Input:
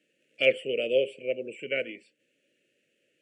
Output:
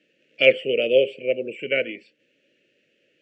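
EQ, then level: low-pass 5.7 kHz 24 dB/octave; +7.0 dB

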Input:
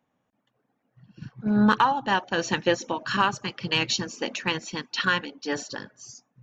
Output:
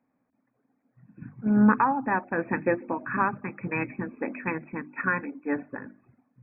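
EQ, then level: brick-wall FIR low-pass 2.6 kHz; peaking EQ 260 Hz +10.5 dB 0.47 oct; hum notches 50/100/150/200/250/300/350 Hz; -2.5 dB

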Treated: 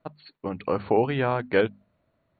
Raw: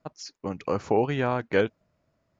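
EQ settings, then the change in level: brick-wall FIR low-pass 4.5 kHz; hum notches 50/100/150/200/250 Hz; +1.5 dB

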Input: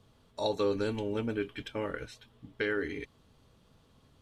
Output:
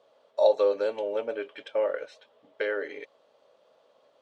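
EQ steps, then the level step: resonant high-pass 570 Hz, resonance Q 6.2; distance through air 81 m; 0.0 dB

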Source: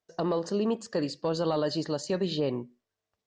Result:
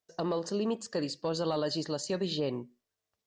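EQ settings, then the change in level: treble shelf 3.7 kHz +6.5 dB; -3.5 dB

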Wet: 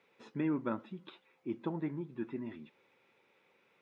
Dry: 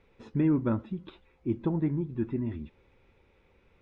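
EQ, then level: high-pass 140 Hz 24 dB/octave; bass shelf 420 Hz -12 dB; 0.0 dB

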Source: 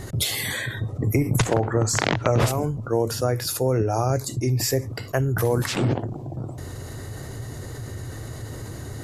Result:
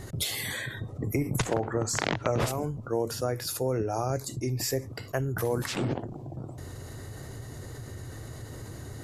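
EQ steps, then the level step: dynamic bell 110 Hz, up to -5 dB, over -35 dBFS, Q 3.3; -6.0 dB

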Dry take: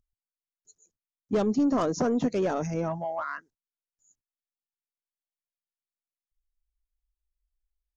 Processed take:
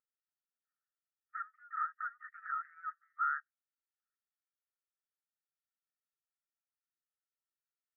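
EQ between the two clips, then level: brick-wall FIR high-pass 1.2 kHz; rippled Chebyshev low-pass 1.9 kHz, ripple 9 dB; +5.5 dB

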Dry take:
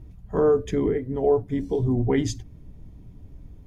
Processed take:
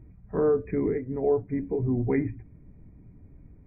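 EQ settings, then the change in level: brick-wall FIR low-pass 2.5 kHz; bass shelf 99 Hz -9.5 dB; peaking EQ 880 Hz -6 dB 2.1 oct; 0.0 dB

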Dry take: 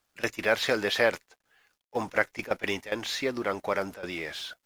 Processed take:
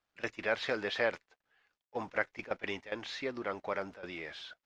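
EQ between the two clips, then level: distance through air 140 m; bass shelf 500 Hz -3 dB; -5.5 dB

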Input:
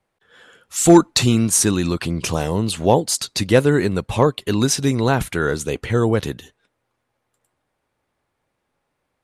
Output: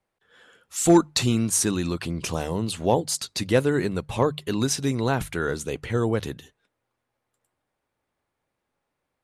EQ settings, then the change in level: hum notches 50/100/150 Hz; -6.0 dB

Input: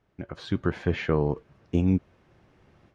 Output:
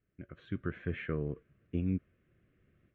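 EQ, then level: dynamic bell 1.4 kHz, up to +4 dB, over -44 dBFS, Q 0.86; distance through air 170 m; static phaser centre 2.1 kHz, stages 4; -9.0 dB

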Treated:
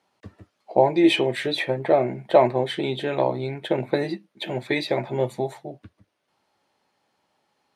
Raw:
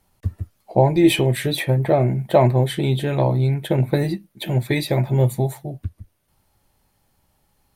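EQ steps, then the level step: band-pass 310–4900 Hz; 0.0 dB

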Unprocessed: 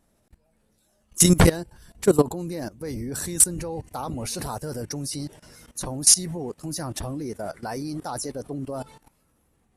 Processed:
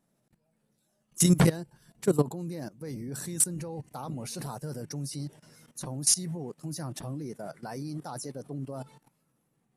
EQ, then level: resonant low shelf 100 Hz -10.5 dB, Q 3; -8.0 dB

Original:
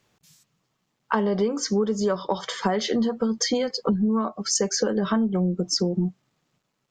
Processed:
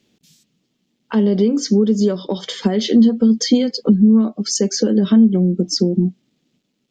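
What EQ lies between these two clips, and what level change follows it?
FFT filter 130 Hz 0 dB, 240 Hz +14 dB, 1.1 kHz -9 dB, 3.3 kHz +7 dB, 9.1 kHz 0 dB; 0.0 dB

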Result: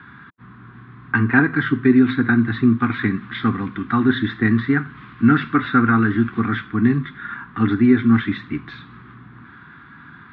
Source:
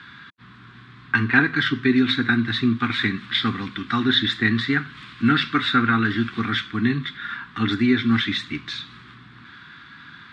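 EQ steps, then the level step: low-pass 1.3 kHz 12 dB/octave; +5.0 dB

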